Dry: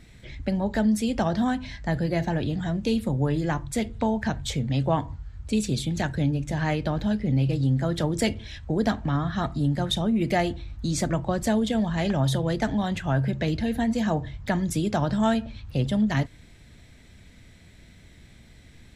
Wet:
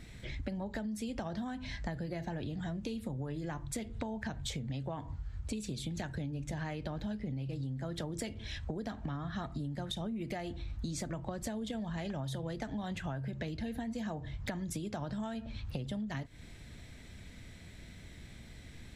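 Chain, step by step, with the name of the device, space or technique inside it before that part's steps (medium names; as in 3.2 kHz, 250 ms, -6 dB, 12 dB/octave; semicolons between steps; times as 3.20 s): serial compression, leveller first (compression 3:1, threshold -25 dBFS, peak gain reduction 6.5 dB; compression 6:1, threshold -36 dBFS, peak gain reduction 12.5 dB)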